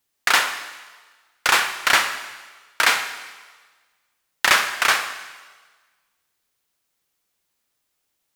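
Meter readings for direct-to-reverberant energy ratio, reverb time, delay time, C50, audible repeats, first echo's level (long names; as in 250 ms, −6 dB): 8.5 dB, 1.4 s, no echo audible, 9.5 dB, no echo audible, no echo audible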